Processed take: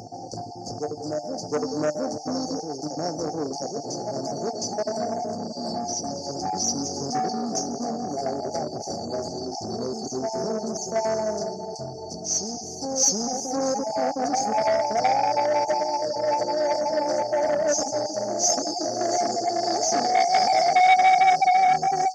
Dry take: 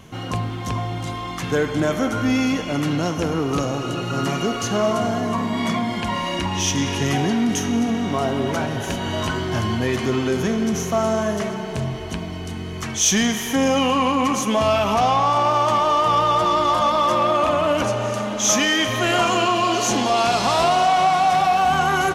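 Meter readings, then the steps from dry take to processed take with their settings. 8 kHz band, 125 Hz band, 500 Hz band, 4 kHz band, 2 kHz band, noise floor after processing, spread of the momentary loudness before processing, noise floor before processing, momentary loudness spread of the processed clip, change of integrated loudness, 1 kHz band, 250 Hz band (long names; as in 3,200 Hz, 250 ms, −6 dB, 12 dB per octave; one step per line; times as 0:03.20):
−1.5 dB, −14.5 dB, −3.0 dB, −6.5 dB, −7.5 dB, −36 dBFS, 9 LU, −29 dBFS, 12 LU, −4.5 dB, −3.0 dB, −9.5 dB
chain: time-frequency cells dropped at random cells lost 23%
meter weighting curve ITU-R 468
brick-wall band-stop 890–4,400 Hz
in parallel at −10.5 dB: gain into a clipping stage and back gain 14 dB
on the sum: high-frequency loss of the air 240 metres
tuned comb filter 150 Hz, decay 0.19 s, harmonics all, mix 50%
on a send: backwards echo 713 ms −5.5 dB
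on the sum: saturating transformer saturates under 1,500 Hz
level +6 dB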